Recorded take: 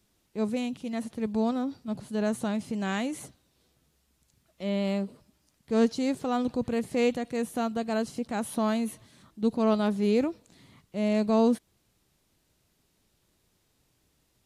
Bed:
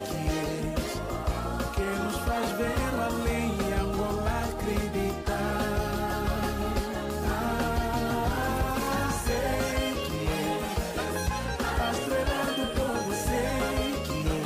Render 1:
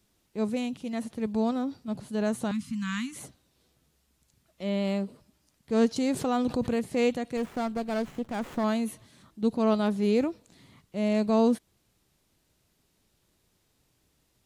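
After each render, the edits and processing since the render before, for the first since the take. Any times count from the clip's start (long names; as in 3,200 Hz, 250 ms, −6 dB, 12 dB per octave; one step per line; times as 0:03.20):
0:02.51–0:03.16: elliptic band-stop filter 250–1,100 Hz
0:05.96–0:06.76: envelope flattener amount 50%
0:07.37–0:08.64: windowed peak hold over 9 samples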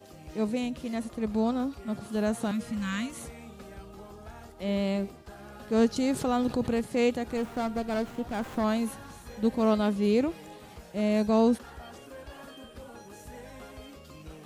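mix in bed −17.5 dB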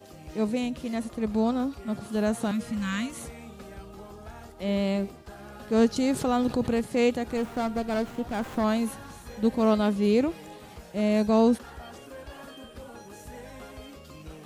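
level +2 dB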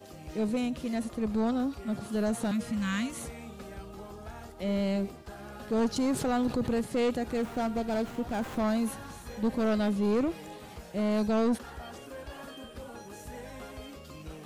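soft clipping −22 dBFS, distortion −10 dB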